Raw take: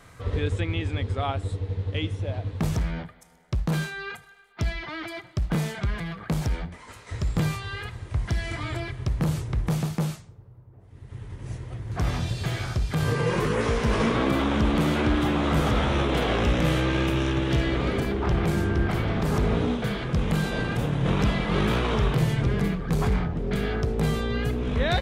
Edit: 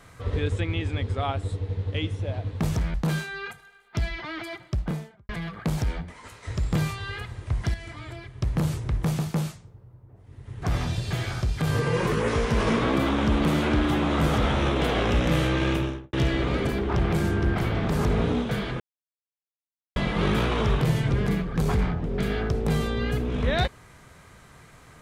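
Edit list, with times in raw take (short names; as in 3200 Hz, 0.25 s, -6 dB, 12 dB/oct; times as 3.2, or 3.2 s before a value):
2.94–3.58 cut
5.29–5.93 studio fade out
8.38–9.06 gain -8 dB
11.26–11.95 cut
17.04–17.46 studio fade out
20.13–21.29 mute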